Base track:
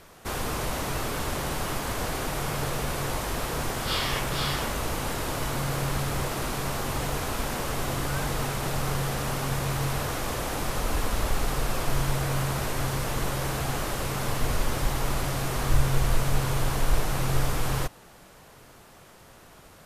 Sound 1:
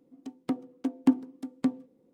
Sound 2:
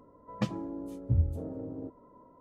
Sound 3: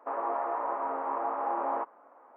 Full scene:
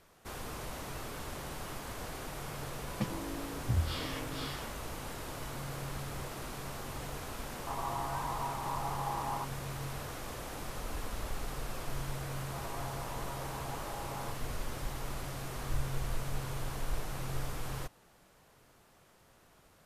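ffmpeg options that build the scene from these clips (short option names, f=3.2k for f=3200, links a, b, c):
-filter_complex "[3:a]asplit=2[a][b];[0:a]volume=-12dB[c];[a]aecho=1:1:1:0.94[d];[2:a]atrim=end=2.4,asetpts=PTS-STARTPTS,volume=-4.5dB,afade=t=in:d=0.004:c=hsin,afade=t=out:st=2.396:d=0.004:c=hsin,adelay=2590[e];[d]atrim=end=2.36,asetpts=PTS-STARTPTS,volume=-10dB,afade=t=in:d=0.004:c=hsin,afade=t=out:st=2.356:d=0.004:c=hsin,adelay=7600[f];[b]atrim=end=2.36,asetpts=PTS-STARTPTS,volume=-13.5dB,afade=t=in:d=0.004:c=hsin,afade=t=out:st=2.356:d=0.004:c=hsin,adelay=12470[g];[c][e][f][g]amix=inputs=4:normalize=0"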